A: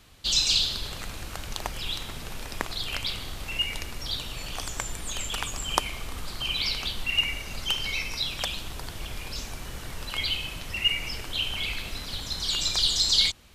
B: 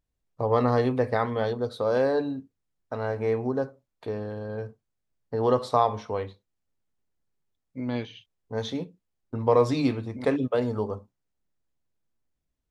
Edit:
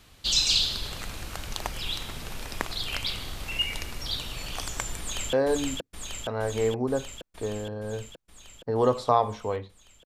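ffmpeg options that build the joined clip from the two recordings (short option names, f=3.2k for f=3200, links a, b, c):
-filter_complex "[0:a]apad=whole_dur=10.05,atrim=end=10.05,atrim=end=5.332[a];[1:a]atrim=start=1.978:end=6.7[b];[a][b]acrossfade=d=0.004:c1=hsin:c2=hsin,asplit=2[c][d];[d]afade=t=in:st=4.99:d=0.01,afade=t=out:st=5.33:d=0.01,aecho=0:1:470|940|1410|1880|2350|2820|3290|3760|4230|4700|5170|5640:0.794328|0.595746|0.44681|0.335107|0.25133|0.188498|0.141373|0.10603|0.0795225|0.0596419|0.0447314|0.0335486[e];[c][e]amix=inputs=2:normalize=0"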